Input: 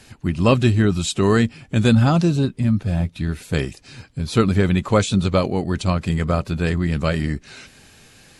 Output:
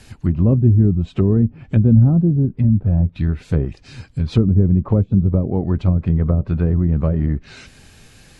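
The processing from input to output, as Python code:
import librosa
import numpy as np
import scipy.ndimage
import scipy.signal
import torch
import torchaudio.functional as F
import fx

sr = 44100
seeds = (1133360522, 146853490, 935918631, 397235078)

y = fx.env_lowpass_down(x, sr, base_hz=350.0, full_db=-14.5)
y = fx.low_shelf(y, sr, hz=120.0, db=10.0)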